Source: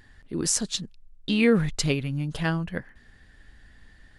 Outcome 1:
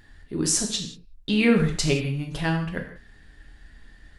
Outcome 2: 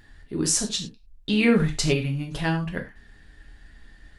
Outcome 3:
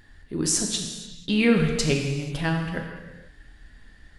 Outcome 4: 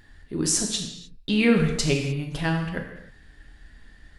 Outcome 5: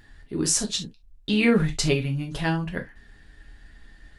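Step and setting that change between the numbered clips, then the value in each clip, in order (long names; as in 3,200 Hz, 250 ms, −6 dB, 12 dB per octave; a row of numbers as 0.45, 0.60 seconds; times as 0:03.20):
reverb whose tail is shaped and stops, gate: 210, 130, 520, 330, 90 milliseconds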